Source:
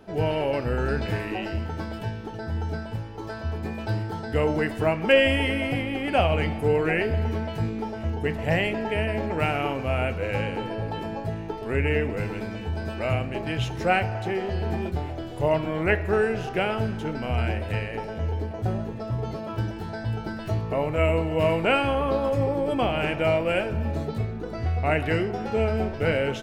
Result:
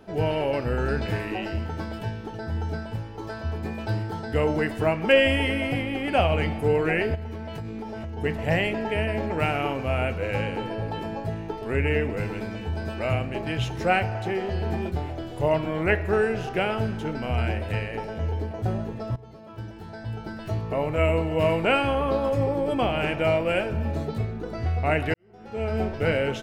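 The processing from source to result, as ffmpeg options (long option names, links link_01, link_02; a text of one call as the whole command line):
ffmpeg -i in.wav -filter_complex "[0:a]asplit=3[link_01][link_02][link_03];[link_01]afade=type=out:start_time=7.14:duration=0.02[link_04];[link_02]acompressor=threshold=-30dB:ratio=12:attack=3.2:release=140:knee=1:detection=peak,afade=type=in:start_time=7.14:duration=0.02,afade=type=out:start_time=8.17:duration=0.02[link_05];[link_03]afade=type=in:start_time=8.17:duration=0.02[link_06];[link_04][link_05][link_06]amix=inputs=3:normalize=0,asplit=3[link_07][link_08][link_09];[link_07]atrim=end=19.16,asetpts=PTS-STARTPTS,afade=type=out:start_time=19.156:duration=0.004:curve=hsin:silence=0.125893[link_10];[link_08]atrim=start=19.16:end=25.14,asetpts=PTS-STARTPTS,afade=type=in:duration=1.77:silence=0.125893,afade=type=out:start_time=5.976:duration=0.004:curve=hsin[link_11];[link_09]atrim=start=25.14,asetpts=PTS-STARTPTS,afade=type=in:duration=0.65:curve=qua[link_12];[link_10][link_11][link_12]concat=n=3:v=0:a=1" out.wav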